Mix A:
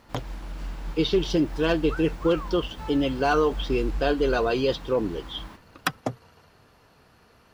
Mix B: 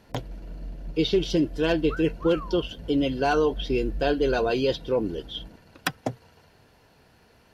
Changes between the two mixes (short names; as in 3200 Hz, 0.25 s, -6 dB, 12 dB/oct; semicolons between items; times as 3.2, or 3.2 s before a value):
speech: add bell 1200 Hz -11 dB 0.23 oct; first sound: add rippled Chebyshev low-pass 700 Hz, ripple 3 dB